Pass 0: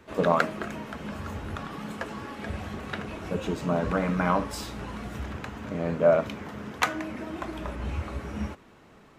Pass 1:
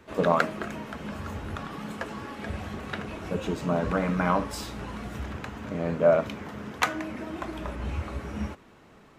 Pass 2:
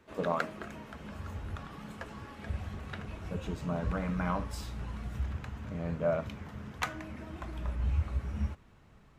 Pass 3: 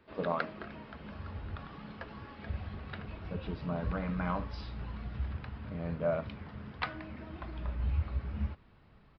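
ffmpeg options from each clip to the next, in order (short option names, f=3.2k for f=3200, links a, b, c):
-af anull
-af "asubboost=boost=4.5:cutoff=140,volume=-8.5dB"
-af "aresample=11025,aresample=44100,volume=-1.5dB"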